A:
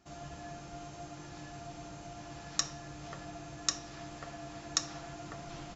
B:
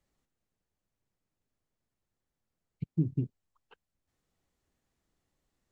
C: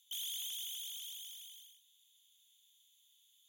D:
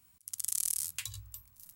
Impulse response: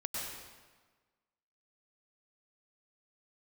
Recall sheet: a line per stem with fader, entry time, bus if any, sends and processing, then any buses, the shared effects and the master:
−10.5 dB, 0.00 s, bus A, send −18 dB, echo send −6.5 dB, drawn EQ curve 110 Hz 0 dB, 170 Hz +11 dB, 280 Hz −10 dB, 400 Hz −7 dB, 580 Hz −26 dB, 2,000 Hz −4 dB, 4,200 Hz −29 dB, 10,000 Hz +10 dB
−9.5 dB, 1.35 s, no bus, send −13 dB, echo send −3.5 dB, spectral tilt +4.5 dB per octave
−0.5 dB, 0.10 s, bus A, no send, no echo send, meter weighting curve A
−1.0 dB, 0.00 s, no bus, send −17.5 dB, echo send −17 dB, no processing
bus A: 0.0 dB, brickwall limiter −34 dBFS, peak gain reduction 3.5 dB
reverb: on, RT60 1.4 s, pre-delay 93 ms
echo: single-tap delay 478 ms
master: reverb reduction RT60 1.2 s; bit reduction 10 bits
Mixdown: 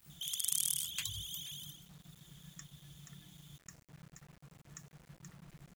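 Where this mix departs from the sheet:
stem B: muted
stem C −0.5 dB → +9.0 dB

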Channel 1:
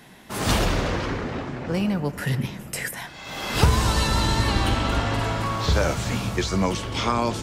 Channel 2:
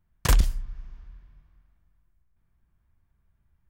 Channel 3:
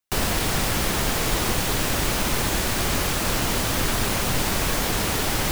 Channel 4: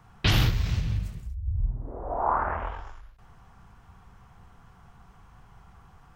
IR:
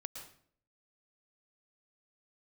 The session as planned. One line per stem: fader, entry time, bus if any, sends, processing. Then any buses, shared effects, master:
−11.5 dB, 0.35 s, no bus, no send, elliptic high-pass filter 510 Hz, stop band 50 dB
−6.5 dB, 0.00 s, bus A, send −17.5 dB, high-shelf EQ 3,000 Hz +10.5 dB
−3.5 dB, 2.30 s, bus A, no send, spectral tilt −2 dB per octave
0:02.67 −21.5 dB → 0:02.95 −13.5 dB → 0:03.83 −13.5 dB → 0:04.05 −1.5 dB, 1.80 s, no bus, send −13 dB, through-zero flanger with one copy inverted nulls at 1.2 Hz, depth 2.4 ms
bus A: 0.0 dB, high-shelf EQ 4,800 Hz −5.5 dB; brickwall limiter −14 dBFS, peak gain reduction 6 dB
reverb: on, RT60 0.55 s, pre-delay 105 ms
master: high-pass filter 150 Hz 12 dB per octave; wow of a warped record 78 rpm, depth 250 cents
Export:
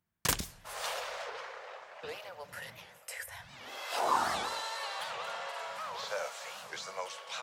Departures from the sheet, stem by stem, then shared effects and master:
stem 3: muted
reverb return −7.5 dB

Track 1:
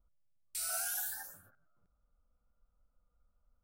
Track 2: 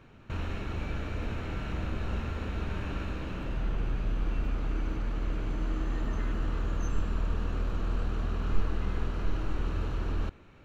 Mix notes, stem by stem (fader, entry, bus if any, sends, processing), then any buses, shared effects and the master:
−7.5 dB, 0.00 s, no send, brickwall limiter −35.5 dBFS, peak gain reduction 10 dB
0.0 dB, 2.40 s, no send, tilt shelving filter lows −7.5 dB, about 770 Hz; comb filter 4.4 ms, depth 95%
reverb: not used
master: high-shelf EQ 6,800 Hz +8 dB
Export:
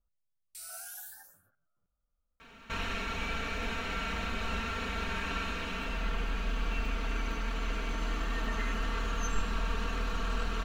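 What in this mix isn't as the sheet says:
stem 1: missing brickwall limiter −35.5 dBFS, peak gain reduction 10 dB
master: missing high-shelf EQ 6,800 Hz +8 dB

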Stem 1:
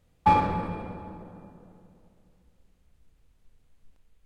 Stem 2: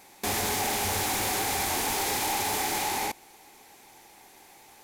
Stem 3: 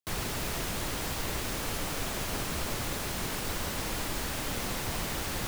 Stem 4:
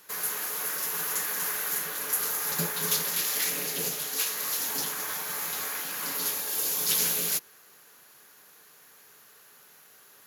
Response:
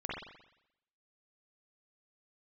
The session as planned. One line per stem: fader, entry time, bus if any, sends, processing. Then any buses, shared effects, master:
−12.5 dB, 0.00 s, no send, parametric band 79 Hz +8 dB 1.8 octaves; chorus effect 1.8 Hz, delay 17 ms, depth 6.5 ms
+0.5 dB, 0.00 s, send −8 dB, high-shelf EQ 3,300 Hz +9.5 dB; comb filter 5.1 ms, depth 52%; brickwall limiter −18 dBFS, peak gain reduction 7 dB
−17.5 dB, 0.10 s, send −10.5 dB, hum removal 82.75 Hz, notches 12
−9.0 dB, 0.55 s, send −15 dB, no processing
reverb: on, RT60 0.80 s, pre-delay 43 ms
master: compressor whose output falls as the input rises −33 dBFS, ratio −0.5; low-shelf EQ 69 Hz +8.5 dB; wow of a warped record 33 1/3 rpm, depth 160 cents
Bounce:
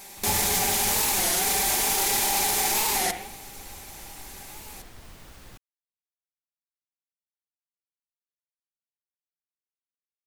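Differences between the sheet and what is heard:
stem 4: muted
master: missing compressor whose output falls as the input rises −33 dBFS, ratio −0.5

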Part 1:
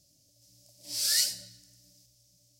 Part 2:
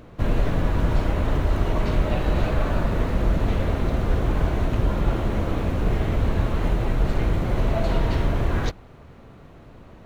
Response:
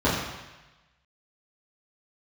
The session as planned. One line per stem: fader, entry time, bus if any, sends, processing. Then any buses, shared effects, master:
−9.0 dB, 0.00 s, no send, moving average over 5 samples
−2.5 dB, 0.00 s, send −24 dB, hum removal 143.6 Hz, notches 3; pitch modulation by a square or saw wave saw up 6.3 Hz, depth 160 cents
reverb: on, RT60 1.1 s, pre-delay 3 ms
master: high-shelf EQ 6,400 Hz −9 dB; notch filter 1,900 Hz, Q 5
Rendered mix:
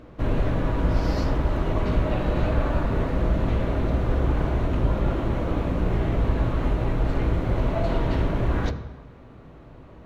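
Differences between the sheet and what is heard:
stem 2: missing pitch modulation by a square or saw wave saw up 6.3 Hz, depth 160 cents
master: missing notch filter 1,900 Hz, Q 5

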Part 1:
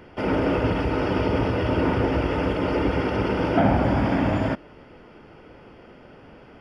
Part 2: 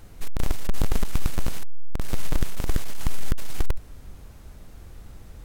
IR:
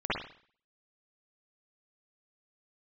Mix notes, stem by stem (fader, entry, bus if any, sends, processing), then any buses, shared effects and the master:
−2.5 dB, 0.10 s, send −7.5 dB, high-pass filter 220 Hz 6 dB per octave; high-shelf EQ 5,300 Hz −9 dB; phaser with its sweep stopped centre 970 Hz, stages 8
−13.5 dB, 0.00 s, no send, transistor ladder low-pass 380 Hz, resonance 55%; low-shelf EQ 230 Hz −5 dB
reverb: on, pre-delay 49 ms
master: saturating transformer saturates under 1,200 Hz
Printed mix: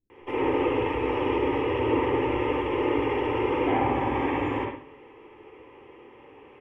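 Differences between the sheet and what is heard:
stem 2 −13.5 dB → −23.5 dB
master: missing saturating transformer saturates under 1,200 Hz

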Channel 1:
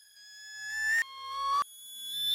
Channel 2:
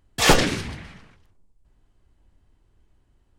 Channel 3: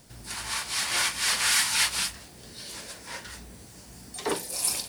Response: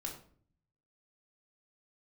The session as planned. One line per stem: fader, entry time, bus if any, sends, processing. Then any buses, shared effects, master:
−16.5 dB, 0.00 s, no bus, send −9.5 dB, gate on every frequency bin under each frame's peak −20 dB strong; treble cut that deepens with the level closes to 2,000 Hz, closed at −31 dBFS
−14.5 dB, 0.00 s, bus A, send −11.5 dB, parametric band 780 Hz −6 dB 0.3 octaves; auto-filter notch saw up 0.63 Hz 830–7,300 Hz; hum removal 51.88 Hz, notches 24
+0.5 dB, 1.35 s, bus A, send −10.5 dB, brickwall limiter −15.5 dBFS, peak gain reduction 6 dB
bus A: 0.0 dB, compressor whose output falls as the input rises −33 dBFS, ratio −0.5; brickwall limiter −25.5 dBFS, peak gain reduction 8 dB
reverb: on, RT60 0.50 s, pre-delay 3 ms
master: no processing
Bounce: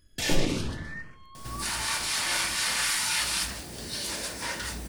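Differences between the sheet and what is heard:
stem 2 −14.5 dB → −6.0 dB
reverb return +9.0 dB

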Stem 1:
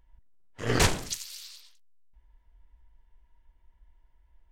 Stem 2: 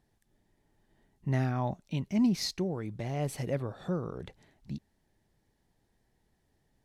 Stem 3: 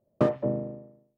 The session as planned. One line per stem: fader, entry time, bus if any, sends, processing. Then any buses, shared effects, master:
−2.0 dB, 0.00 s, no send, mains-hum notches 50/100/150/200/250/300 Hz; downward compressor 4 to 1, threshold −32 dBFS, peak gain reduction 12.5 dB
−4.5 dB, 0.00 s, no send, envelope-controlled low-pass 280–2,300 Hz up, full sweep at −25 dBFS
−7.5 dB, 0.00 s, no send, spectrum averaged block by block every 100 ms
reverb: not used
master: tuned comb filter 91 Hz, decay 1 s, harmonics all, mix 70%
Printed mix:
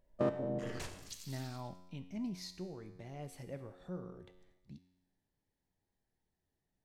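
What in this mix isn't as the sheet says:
stem 2: missing envelope-controlled low-pass 280–2,300 Hz up, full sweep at −25 dBFS
stem 3 −7.5 dB → +2.5 dB

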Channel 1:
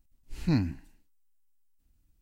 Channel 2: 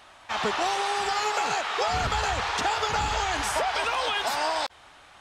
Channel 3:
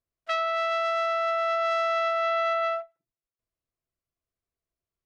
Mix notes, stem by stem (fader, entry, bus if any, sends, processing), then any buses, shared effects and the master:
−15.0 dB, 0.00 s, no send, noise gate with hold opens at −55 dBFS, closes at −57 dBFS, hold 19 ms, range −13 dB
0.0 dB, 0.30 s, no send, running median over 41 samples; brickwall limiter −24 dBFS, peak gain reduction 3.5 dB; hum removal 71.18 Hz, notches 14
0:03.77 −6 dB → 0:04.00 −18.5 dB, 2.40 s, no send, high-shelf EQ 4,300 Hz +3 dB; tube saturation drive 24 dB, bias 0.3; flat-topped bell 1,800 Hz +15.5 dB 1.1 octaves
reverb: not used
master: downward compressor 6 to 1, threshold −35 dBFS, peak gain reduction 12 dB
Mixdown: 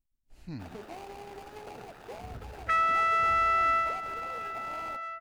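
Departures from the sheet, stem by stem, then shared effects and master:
stem 1: missing noise gate with hold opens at −55 dBFS, closes at −57 dBFS, hold 19 ms, range −13 dB
stem 2 0.0 dB → −10.0 dB
master: missing downward compressor 6 to 1, threshold −35 dBFS, peak gain reduction 12 dB

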